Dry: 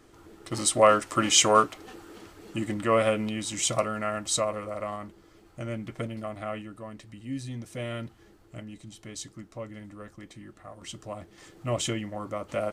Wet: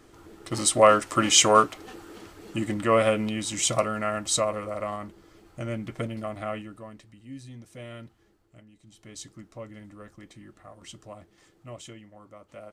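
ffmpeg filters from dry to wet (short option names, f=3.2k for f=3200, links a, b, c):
-af "volume=13.5dB,afade=t=out:st=6.49:d=0.66:silence=0.354813,afade=t=out:st=8.05:d=0.7:silence=0.473151,afade=t=in:st=8.75:d=0.48:silence=0.266073,afade=t=out:st=10.58:d=1.22:silence=0.237137"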